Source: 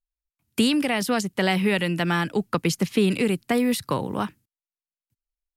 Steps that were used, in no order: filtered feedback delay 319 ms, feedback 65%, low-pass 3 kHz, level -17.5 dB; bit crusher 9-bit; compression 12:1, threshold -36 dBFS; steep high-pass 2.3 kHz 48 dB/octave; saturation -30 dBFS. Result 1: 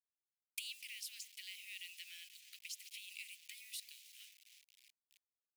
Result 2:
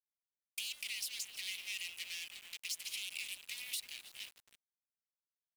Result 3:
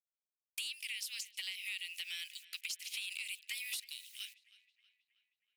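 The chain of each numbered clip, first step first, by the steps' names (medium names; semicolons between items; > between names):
compression > filtered feedback delay > bit crusher > saturation > steep high-pass; filtered feedback delay > saturation > steep high-pass > bit crusher > compression; bit crusher > steep high-pass > compression > filtered feedback delay > saturation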